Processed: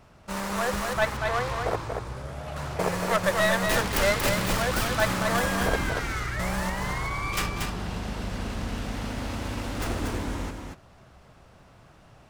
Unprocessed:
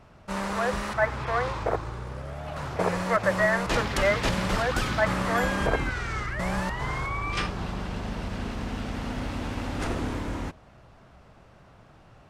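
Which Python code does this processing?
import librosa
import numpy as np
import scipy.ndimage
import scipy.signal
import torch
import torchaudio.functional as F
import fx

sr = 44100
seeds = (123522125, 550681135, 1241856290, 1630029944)

p1 = fx.tracing_dist(x, sr, depth_ms=0.18)
p2 = fx.high_shelf(p1, sr, hz=5500.0, db=9.0)
p3 = p2 + fx.echo_single(p2, sr, ms=234, db=-5.0, dry=0)
y = p3 * librosa.db_to_amplitude(-1.5)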